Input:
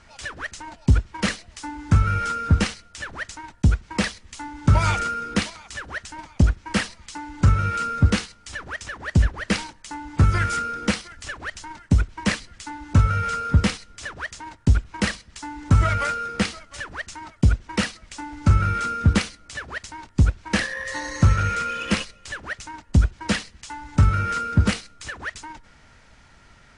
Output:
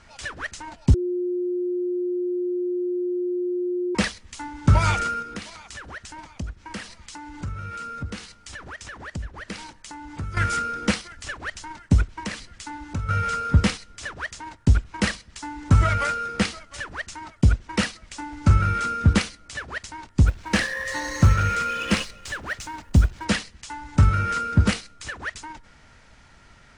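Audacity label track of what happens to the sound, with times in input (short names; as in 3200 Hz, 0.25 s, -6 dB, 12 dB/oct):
0.940000	3.950000	bleep 357 Hz -22.5 dBFS
5.220000	10.370000	compressor 2.5:1, threshold -36 dBFS
12.210000	13.090000	compressor 3:1, threshold -29 dBFS
20.270000	23.250000	G.711 law mismatch coded by mu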